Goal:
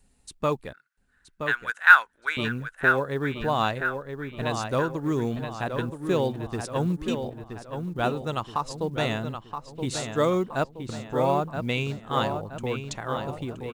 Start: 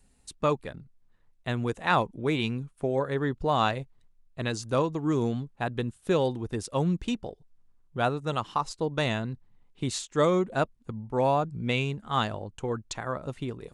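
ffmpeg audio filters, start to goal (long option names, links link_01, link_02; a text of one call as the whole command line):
ffmpeg -i in.wav -filter_complex "[0:a]asettb=1/sr,asplit=3[link_01][link_02][link_03];[link_01]atrim=end=0.734[link_04];[link_02]atrim=start=0.73:end=2.37,asetpts=PTS-STARTPTS,afade=type=in:duration=0.004:curve=qsin,afade=type=out:start_time=1.636:duration=0.004:curve=qsin,highpass=frequency=1500:width_type=q:width=11[link_05];[link_03]atrim=start=2.366[link_06];[link_04][link_05]acrossfade=duration=0.004:curve1=hsin:curve2=qsin[link_07];[link_07][link_06]acrossfade=duration=0.004:curve1=qsin:curve2=hsin,asplit=2[link_08][link_09];[link_09]adelay=973,lowpass=frequency=3900:poles=1,volume=-7dB,asplit=2[link_10][link_11];[link_11]adelay=973,lowpass=frequency=3900:poles=1,volume=0.47,asplit=2[link_12][link_13];[link_13]adelay=973,lowpass=frequency=3900:poles=1,volume=0.47,asplit=2[link_14][link_15];[link_15]adelay=973,lowpass=frequency=3900:poles=1,volume=0.47,asplit=2[link_16][link_17];[link_17]adelay=973,lowpass=frequency=3900:poles=1,volume=0.47,asplit=2[link_18][link_19];[link_19]adelay=973,lowpass=frequency=3900:poles=1,volume=0.47[link_20];[link_08][link_10][link_12][link_14][link_16][link_18][link_20]amix=inputs=7:normalize=0,acrusher=bits=9:mode=log:mix=0:aa=0.000001" out.wav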